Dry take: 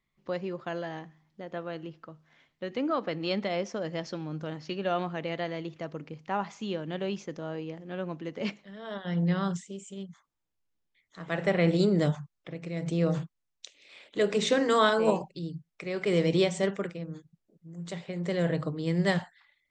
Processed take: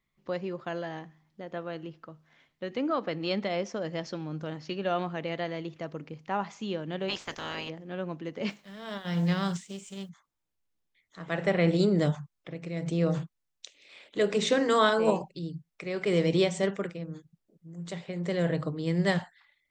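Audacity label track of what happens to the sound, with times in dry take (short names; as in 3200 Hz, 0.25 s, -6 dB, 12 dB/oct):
7.080000	7.680000	spectral limiter ceiling under each frame's peak by 28 dB
8.490000	10.080000	spectral whitening exponent 0.6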